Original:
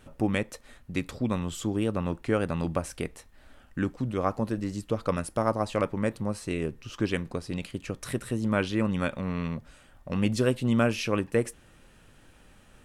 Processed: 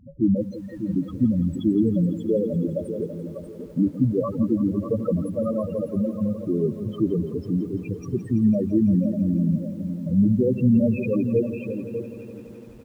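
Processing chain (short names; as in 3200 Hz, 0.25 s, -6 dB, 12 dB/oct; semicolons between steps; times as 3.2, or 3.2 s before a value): 2.12–2.85 low shelf 240 Hz -8 dB; 5.75–6.34 level quantiser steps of 16 dB; limiter -19 dBFS, peak gain reduction 8 dB; notch comb 730 Hz; feedback echo 0.595 s, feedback 20%, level -9 dB; loudest bins only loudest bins 4; tilt shelf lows +3.5 dB, about 1400 Hz; lo-fi delay 0.168 s, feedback 80%, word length 10-bit, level -14 dB; gain +8.5 dB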